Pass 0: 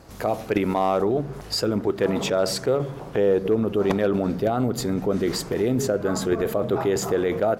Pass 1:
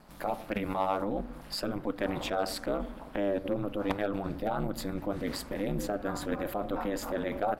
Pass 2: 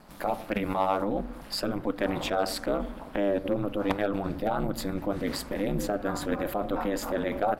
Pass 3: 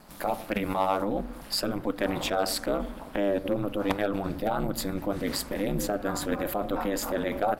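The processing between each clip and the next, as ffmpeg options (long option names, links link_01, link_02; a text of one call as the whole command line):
ffmpeg -i in.wav -af "aeval=exprs='val(0)*sin(2*PI*100*n/s)':channel_layout=same,equalizer=frequency=100:width_type=o:width=0.67:gain=-12,equalizer=frequency=400:width_type=o:width=0.67:gain=-9,equalizer=frequency=6300:width_type=o:width=0.67:gain=-9,volume=-3dB" out.wav
ffmpeg -i in.wav -af "bandreject=frequency=50:width_type=h:width=6,bandreject=frequency=100:width_type=h:width=6,bandreject=frequency=150:width_type=h:width=6,volume=3.5dB" out.wav
ffmpeg -i in.wav -af "highshelf=frequency=4800:gain=7" out.wav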